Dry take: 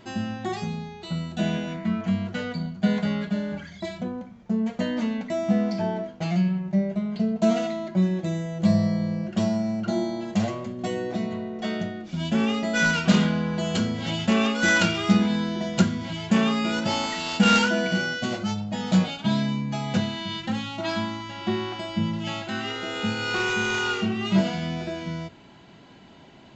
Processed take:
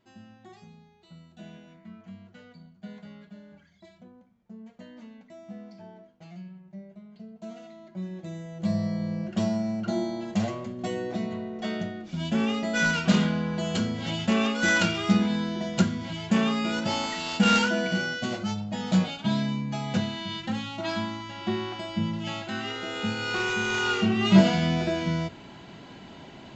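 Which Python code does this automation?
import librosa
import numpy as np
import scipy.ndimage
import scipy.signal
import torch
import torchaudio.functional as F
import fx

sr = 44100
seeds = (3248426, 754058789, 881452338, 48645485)

y = fx.gain(x, sr, db=fx.line((7.56, -20.0), (8.21, -11.0), (9.22, -2.5), (23.65, -2.5), (24.31, 4.5)))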